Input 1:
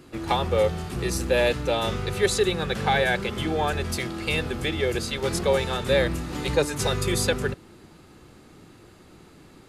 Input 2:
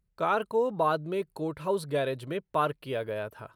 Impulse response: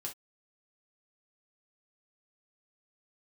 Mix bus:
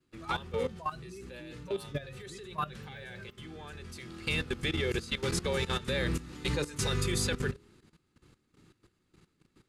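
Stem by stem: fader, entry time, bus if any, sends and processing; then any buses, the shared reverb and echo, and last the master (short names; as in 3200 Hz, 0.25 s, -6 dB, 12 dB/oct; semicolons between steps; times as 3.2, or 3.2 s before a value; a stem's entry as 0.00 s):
-0.5 dB, 0.00 s, send -19 dB, LPF 11000 Hz 12 dB/oct; de-hum 68.63 Hz, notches 7; auto duck -14 dB, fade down 1.25 s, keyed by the second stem
+2.0 dB, 0.00 s, send -7.5 dB, per-bin expansion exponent 3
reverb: on, pre-delay 3 ms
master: expander -42 dBFS; bell 680 Hz -10 dB 0.99 oct; level quantiser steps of 15 dB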